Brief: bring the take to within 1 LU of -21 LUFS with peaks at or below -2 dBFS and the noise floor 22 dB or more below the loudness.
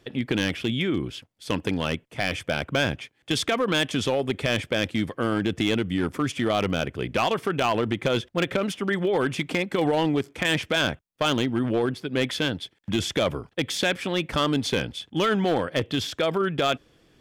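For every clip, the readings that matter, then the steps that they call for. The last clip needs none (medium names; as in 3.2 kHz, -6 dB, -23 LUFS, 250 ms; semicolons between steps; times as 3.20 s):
clipped samples 1.1%; clipping level -16.0 dBFS; loudness -25.5 LUFS; peak level -16.0 dBFS; loudness target -21.0 LUFS
-> clip repair -16 dBFS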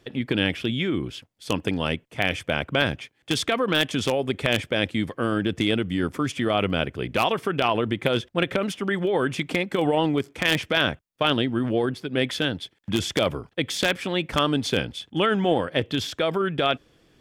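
clipped samples 0.0%; loudness -24.5 LUFS; peak level -7.0 dBFS; loudness target -21.0 LUFS
-> trim +3.5 dB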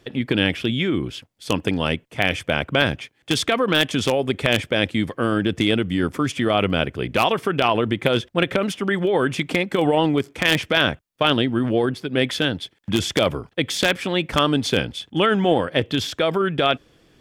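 loudness -21.0 LUFS; peak level -3.5 dBFS; noise floor -61 dBFS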